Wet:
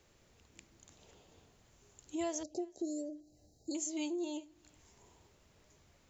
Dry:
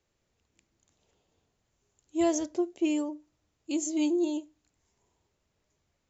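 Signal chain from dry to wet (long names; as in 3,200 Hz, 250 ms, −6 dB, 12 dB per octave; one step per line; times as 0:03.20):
dynamic equaliser 250 Hz, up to −8 dB, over −41 dBFS, Q 0.83
downward compressor 2.5 to 1, threshold −54 dBFS, peak gain reduction 19 dB
0:02.43–0:03.75: linear-phase brick-wall band-stop 840–3,800 Hz
feedback echo with a band-pass in the loop 385 ms, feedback 42%, band-pass 2,100 Hz, level −23.5 dB
level +10.5 dB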